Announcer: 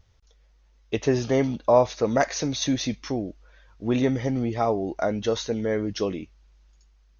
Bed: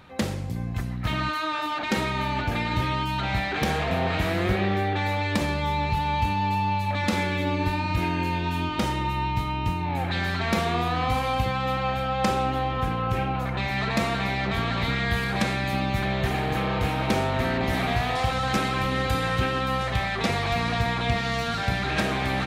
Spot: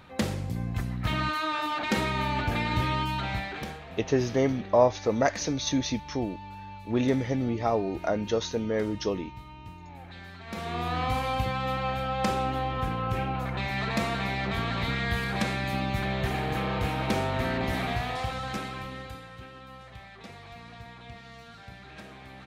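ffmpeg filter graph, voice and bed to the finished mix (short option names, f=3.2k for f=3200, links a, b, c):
-filter_complex "[0:a]adelay=3050,volume=-2.5dB[a];[1:a]volume=13dB,afade=t=out:st=3.01:d=0.79:silence=0.149624,afade=t=in:st=10.45:d=0.51:silence=0.188365,afade=t=out:st=17.62:d=1.65:silence=0.141254[b];[a][b]amix=inputs=2:normalize=0"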